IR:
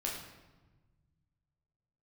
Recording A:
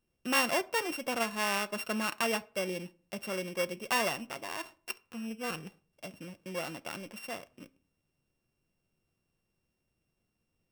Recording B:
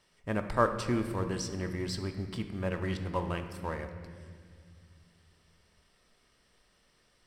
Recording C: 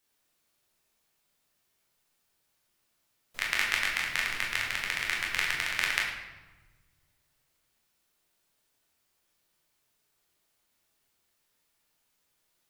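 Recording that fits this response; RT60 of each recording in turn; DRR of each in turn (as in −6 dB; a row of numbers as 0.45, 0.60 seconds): C; 0.45, 2.0, 1.2 seconds; 12.5, 6.5, −3.0 decibels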